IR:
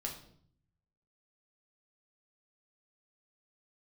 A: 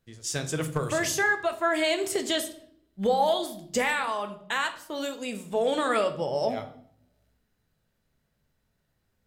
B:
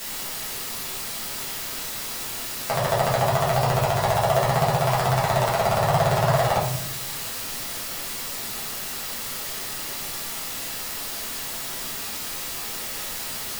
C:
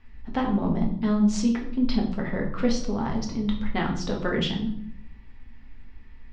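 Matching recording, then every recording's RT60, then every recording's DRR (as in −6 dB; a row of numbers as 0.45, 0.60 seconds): C; 0.60, 0.60, 0.60 seconds; 6.5, −7.0, −0.5 decibels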